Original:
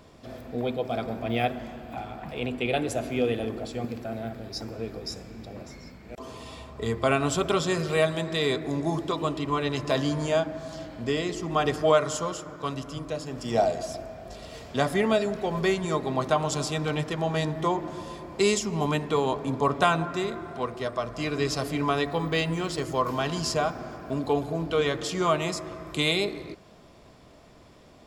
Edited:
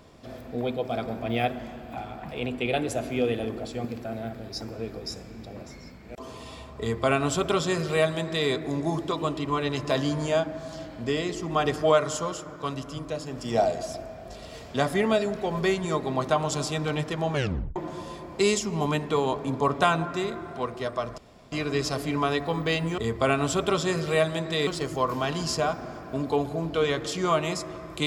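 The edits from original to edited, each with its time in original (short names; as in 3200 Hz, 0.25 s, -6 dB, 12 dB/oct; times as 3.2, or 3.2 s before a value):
6.8–8.49 copy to 22.64
17.33 tape stop 0.43 s
21.18 insert room tone 0.34 s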